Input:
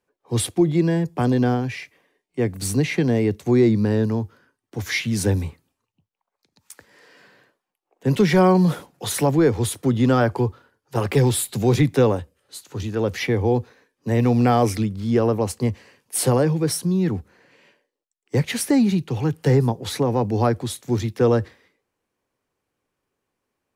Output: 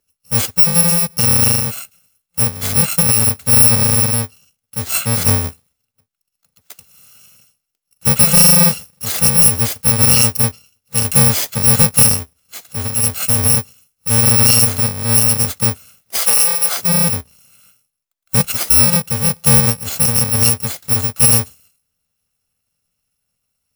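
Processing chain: FFT order left unsorted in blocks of 128 samples; 16.17–16.77 HPF 540 Hz 12 dB/oct; gain +6 dB

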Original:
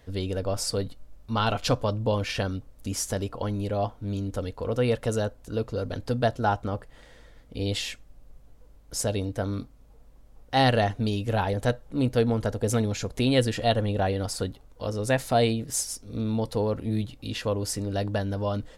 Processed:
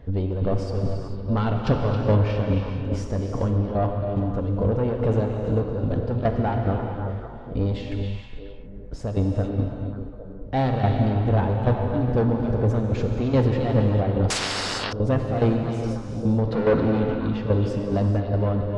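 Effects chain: low shelf 480 Hz +8.5 dB; 16.47–17.07 overdrive pedal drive 24 dB, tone 2400 Hz, clips at -8.5 dBFS; soft clip -18.5 dBFS, distortion -10 dB; tremolo saw down 2.4 Hz, depth 75%; delay with a stepping band-pass 0.27 s, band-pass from 3100 Hz, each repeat -1.4 oct, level -5 dB; non-linear reverb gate 0.48 s flat, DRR 2.5 dB; 12.98–13.61 careless resampling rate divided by 2×, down filtered, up zero stuff; tape spacing loss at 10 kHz 31 dB; 14.3–14.93 spectral compressor 10:1; gain +5.5 dB

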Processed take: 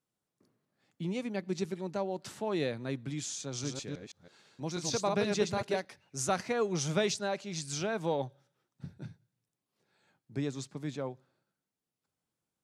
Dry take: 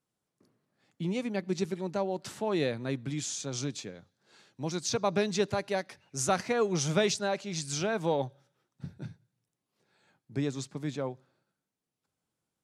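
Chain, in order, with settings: 3.47–5.85 reverse delay 0.162 s, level -3 dB; gain -3 dB

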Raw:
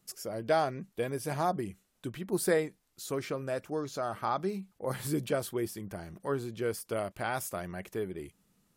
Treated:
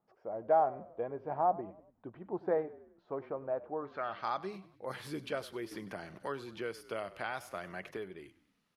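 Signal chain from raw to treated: tilt +3.5 dB/oct; low-pass sweep 810 Hz -> 11000 Hz, 3.77–4.42; air absorption 280 m; frequency-shifting echo 97 ms, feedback 48%, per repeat -33 Hz, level -18 dB; 5.71–7.97 three-band squash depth 70%; gain -2.5 dB

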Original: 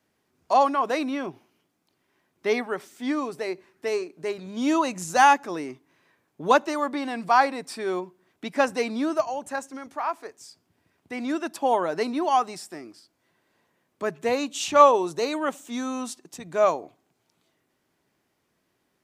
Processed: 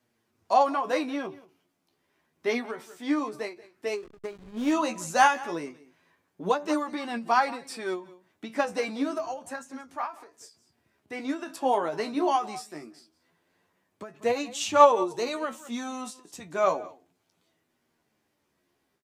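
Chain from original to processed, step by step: flange 0.28 Hz, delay 8.3 ms, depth 6.6 ms, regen +57%; on a send: echo 0.182 s -20 dB; on the sum: flange 0.13 Hz, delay 8.1 ms, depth 7.2 ms, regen +31%; 3.97–4.72 backlash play -40 dBFS; ending taper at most 170 dB/s; gain +6 dB

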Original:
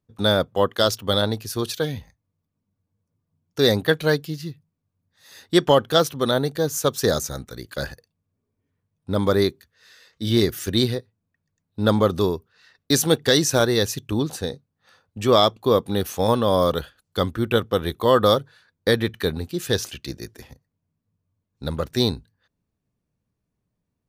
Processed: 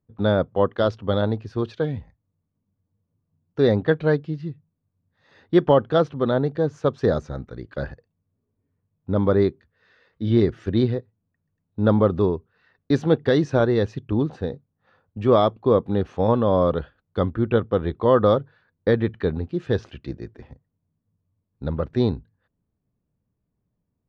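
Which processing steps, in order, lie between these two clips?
tape spacing loss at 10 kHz 45 dB; gain +2.5 dB

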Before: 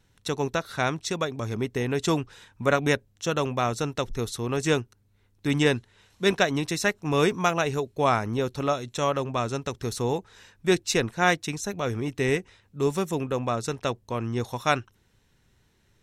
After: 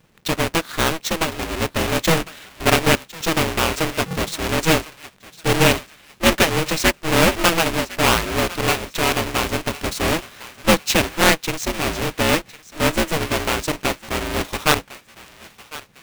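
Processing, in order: half-waves squared off; fifteen-band EQ 100 Hz -11 dB, 630 Hz -6 dB, 2500 Hz +5 dB; thinning echo 1.054 s, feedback 41%, high-pass 720 Hz, level -16 dB; polarity switched at an audio rate 160 Hz; gain +3 dB

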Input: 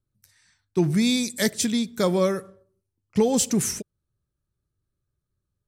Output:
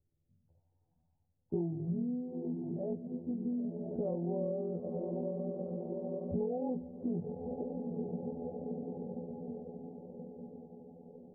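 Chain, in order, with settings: notches 50/100/150/200/250 Hz; diffused feedback echo 0.464 s, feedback 52%, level -11 dB; granular stretch 2×, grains 48 ms; compressor 6:1, threshold -35 dBFS, peak gain reduction 17.5 dB; Chebyshev low-pass 790 Hz, order 5; gain +2.5 dB

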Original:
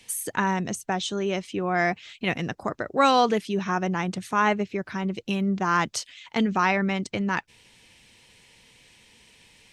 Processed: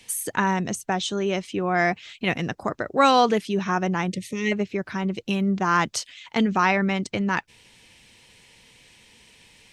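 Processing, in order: spectral gain 4.09–4.52, 600–1800 Hz -29 dB; gain +2 dB

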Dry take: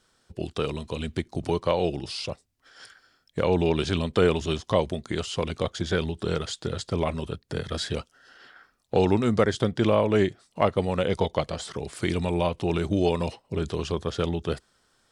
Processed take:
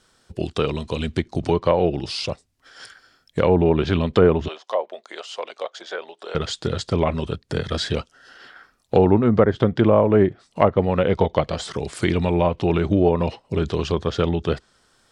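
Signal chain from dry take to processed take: treble ducked by the level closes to 1300 Hz, closed at -18 dBFS; 4.48–6.35 ladder high-pass 490 Hz, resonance 35%; gain +6 dB

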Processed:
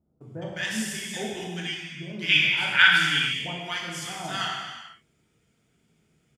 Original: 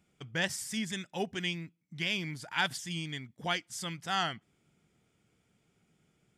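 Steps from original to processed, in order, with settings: 2.08–3.08 band shelf 2100 Hz +13 dB; bands offset in time lows, highs 0.21 s, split 870 Hz; non-linear reverb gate 0.49 s falling, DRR -4 dB; gain -1 dB

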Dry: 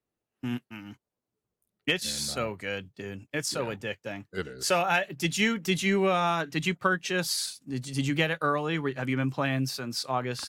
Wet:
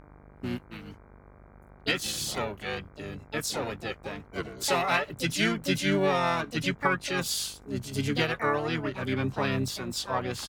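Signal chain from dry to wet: buzz 50 Hz, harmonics 32, -52 dBFS -4 dB/oct; harmoniser -5 st -5 dB, +7 st -6 dB; gain -2.5 dB

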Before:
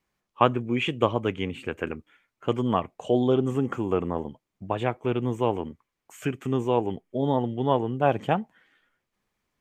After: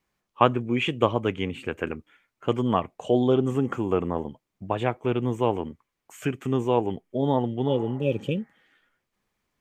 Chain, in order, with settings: spectral repair 7.7–8.65, 580–2300 Hz both; gain +1 dB

